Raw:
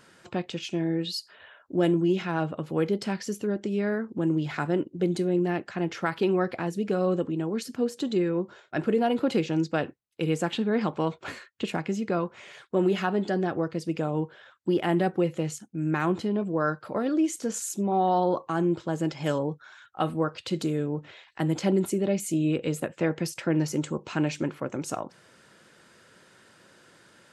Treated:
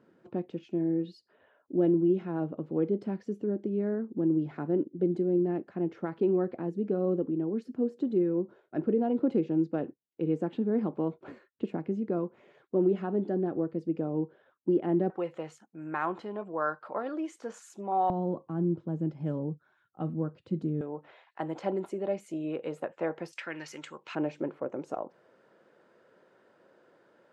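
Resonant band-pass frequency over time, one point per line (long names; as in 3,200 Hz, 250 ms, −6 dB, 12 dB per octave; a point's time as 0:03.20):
resonant band-pass, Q 1.2
300 Hz
from 0:15.10 950 Hz
from 0:18.10 190 Hz
from 0:20.81 780 Hz
from 0:23.33 2,000 Hz
from 0:24.15 530 Hz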